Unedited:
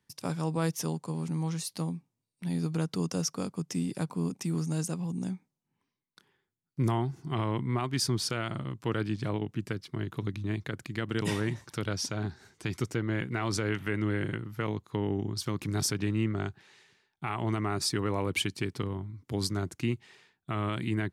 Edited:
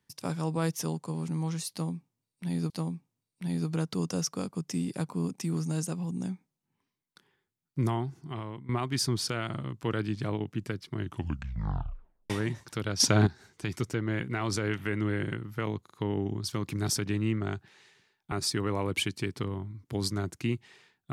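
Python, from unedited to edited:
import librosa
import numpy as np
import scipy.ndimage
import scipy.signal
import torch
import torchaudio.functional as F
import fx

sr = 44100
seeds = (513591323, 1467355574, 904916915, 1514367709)

y = fx.edit(x, sr, fx.repeat(start_s=1.71, length_s=0.99, count=2),
    fx.fade_out_to(start_s=6.8, length_s=0.9, floor_db=-15.5),
    fx.tape_stop(start_s=9.99, length_s=1.32),
    fx.clip_gain(start_s=12.01, length_s=0.27, db=11.0),
    fx.stutter(start_s=14.84, slice_s=0.04, count=3),
    fx.cut(start_s=17.25, length_s=0.46), tone=tone)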